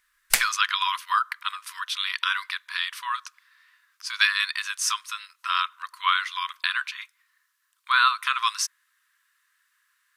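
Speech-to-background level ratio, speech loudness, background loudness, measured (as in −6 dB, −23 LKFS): −1.0 dB, −25.5 LKFS, −24.5 LKFS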